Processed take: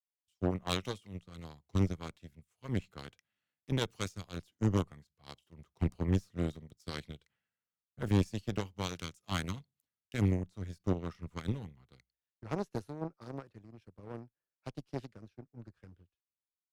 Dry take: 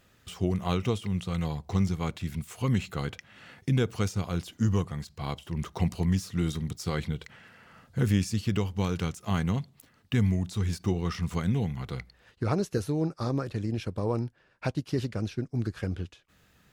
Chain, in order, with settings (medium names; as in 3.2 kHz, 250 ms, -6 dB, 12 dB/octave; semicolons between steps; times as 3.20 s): Chebyshev shaper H 3 -19 dB, 4 -16 dB, 6 -23 dB, 7 -23 dB, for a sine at -12.5 dBFS; one-sided clip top -34 dBFS, bottom -15.5 dBFS; three bands expanded up and down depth 100%; trim -5.5 dB